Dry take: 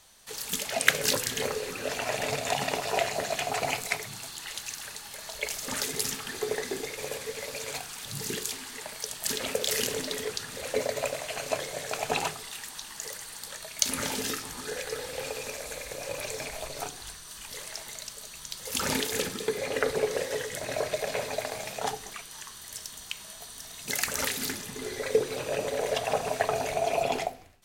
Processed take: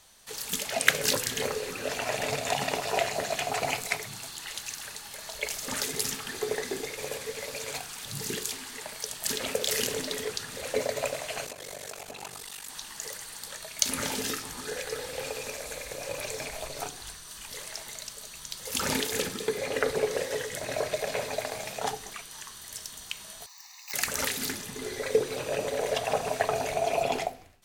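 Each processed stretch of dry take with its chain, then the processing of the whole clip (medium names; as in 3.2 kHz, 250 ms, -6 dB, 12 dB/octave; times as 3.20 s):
11.45–12.69 s: compression 10:1, threshold -34 dBFS + treble shelf 8 kHz +6 dB + ring modulator 24 Hz
23.46–23.94 s: self-modulated delay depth 0.28 ms + Chebyshev high-pass 760 Hz, order 10 + static phaser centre 2.2 kHz, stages 8
whole clip: none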